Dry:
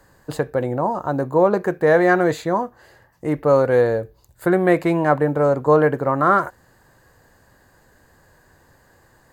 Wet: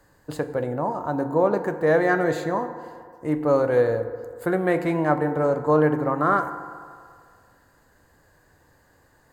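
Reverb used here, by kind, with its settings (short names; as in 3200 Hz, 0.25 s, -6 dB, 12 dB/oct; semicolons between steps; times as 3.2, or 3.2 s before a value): FDN reverb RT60 2.1 s, low-frequency decay 0.75×, high-frequency decay 0.4×, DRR 8.5 dB; gain -5 dB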